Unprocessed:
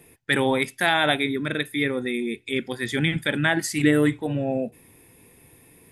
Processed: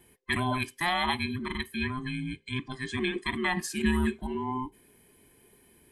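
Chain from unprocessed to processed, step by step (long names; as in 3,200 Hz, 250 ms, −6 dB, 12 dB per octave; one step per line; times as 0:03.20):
frequency inversion band by band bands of 500 Hz
0:01.77–0:03.26: Butterworth low-pass 9,300 Hz 48 dB per octave
level −7 dB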